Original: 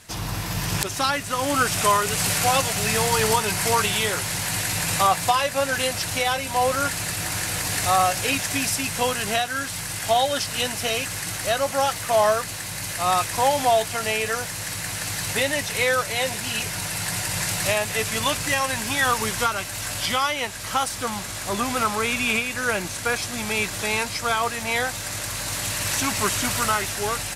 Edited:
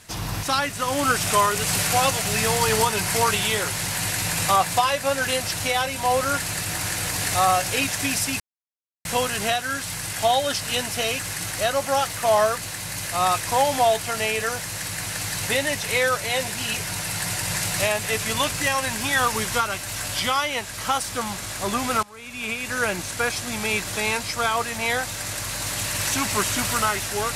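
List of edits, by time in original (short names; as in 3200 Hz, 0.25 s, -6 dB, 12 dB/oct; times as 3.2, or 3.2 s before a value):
0.43–0.94 cut
8.91 insert silence 0.65 s
21.89–22.56 fade in quadratic, from -21.5 dB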